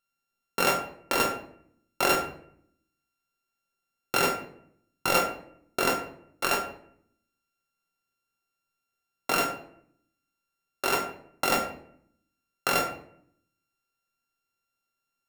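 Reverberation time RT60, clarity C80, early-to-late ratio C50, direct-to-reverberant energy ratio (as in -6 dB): 0.65 s, 12.0 dB, 8.0 dB, 0.0 dB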